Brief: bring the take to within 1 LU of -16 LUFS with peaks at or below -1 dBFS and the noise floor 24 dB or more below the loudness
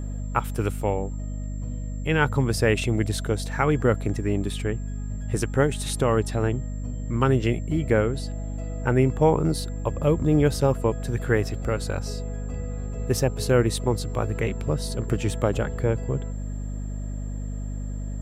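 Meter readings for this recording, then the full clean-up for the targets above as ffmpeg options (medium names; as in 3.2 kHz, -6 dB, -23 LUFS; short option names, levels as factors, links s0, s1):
hum 50 Hz; highest harmonic 250 Hz; hum level -28 dBFS; steady tone 7.4 kHz; tone level -52 dBFS; loudness -25.5 LUFS; peak level -6.5 dBFS; loudness target -16.0 LUFS
-> -af "bandreject=f=50:t=h:w=6,bandreject=f=100:t=h:w=6,bandreject=f=150:t=h:w=6,bandreject=f=200:t=h:w=6,bandreject=f=250:t=h:w=6"
-af "bandreject=f=7400:w=30"
-af "volume=2.99,alimiter=limit=0.891:level=0:latency=1"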